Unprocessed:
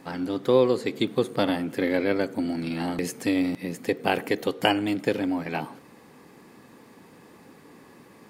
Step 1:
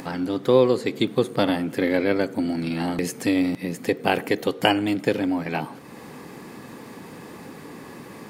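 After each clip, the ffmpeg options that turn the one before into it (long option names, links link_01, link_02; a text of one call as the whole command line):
ffmpeg -i in.wav -filter_complex "[0:a]equalizer=frequency=140:width_type=o:width=0.77:gain=2,asplit=2[link_01][link_02];[link_02]acompressor=mode=upward:threshold=-26dB:ratio=2.5,volume=-1dB[link_03];[link_01][link_03]amix=inputs=2:normalize=0,volume=-3dB" out.wav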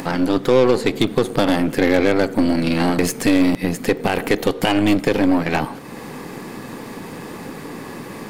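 ffmpeg -i in.wav -af "alimiter=limit=-13dB:level=0:latency=1:release=81,aeval=exprs='0.224*(cos(1*acos(clip(val(0)/0.224,-1,1)))-cos(1*PI/2))+0.0224*(cos(6*acos(clip(val(0)/0.224,-1,1)))-cos(6*PI/2))':channel_layout=same,volume=7.5dB" out.wav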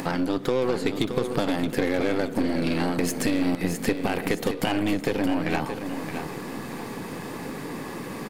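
ffmpeg -i in.wav -af "acompressor=threshold=-19dB:ratio=4,aecho=1:1:622|1244|1866|2488:0.376|0.12|0.0385|0.0123,volume=-2.5dB" out.wav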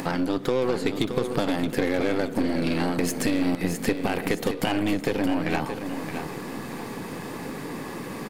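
ffmpeg -i in.wav -af anull out.wav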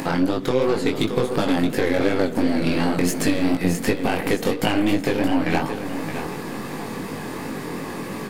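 ffmpeg -i in.wav -af "flanger=delay=18.5:depth=4.9:speed=2.8,volume=7dB" out.wav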